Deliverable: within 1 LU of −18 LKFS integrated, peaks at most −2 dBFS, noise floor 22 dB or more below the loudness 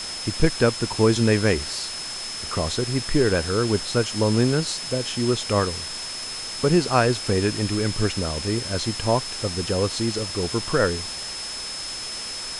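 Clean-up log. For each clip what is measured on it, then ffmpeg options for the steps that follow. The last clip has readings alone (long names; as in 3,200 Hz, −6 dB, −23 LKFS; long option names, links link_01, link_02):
interfering tone 5,200 Hz; level of the tone −32 dBFS; background noise floor −33 dBFS; target noise floor −46 dBFS; integrated loudness −23.5 LKFS; sample peak −4.5 dBFS; target loudness −18.0 LKFS
→ -af "bandreject=frequency=5200:width=30"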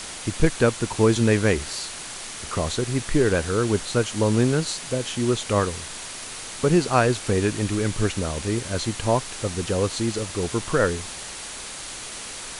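interfering tone none found; background noise floor −36 dBFS; target noise floor −46 dBFS
→ -af "afftdn=noise_reduction=10:noise_floor=-36"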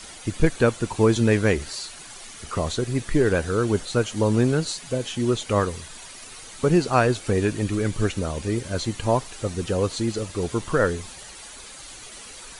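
background noise floor −42 dBFS; target noise floor −46 dBFS
→ -af "afftdn=noise_reduction=6:noise_floor=-42"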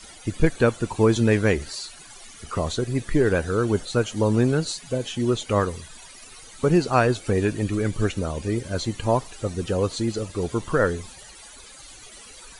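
background noise floor −45 dBFS; target noise floor −46 dBFS
→ -af "afftdn=noise_reduction=6:noise_floor=-45"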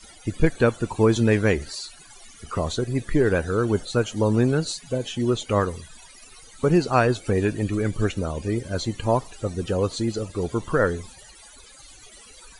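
background noise floor −48 dBFS; integrated loudness −24.0 LKFS; sample peak −5.0 dBFS; target loudness −18.0 LKFS
→ -af "volume=6dB,alimiter=limit=-2dB:level=0:latency=1"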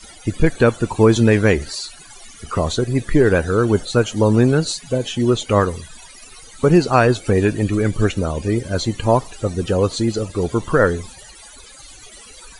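integrated loudness −18.0 LKFS; sample peak −2.0 dBFS; background noise floor −42 dBFS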